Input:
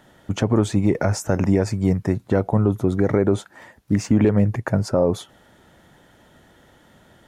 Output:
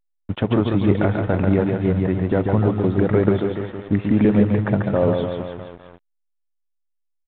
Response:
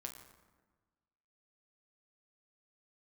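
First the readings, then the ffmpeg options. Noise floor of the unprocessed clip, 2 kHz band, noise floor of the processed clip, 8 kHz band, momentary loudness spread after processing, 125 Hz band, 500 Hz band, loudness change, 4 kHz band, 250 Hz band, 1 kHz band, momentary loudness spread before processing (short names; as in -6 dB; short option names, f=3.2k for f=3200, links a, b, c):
-55 dBFS, +2.0 dB, -72 dBFS, under -40 dB, 11 LU, +1.0 dB, +1.5 dB, +1.0 dB, n/a, +1.5 dB, +2.0 dB, 6 LU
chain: -af "aecho=1:1:140|294|463.4|649.7|854.7:0.631|0.398|0.251|0.158|0.1,aeval=exprs='sgn(val(0))*max(abs(val(0))-0.0133,0)':c=same" -ar 8000 -c:a pcm_alaw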